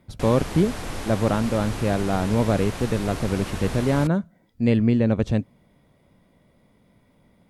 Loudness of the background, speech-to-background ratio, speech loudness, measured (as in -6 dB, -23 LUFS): -33.5 LUFS, 10.5 dB, -23.0 LUFS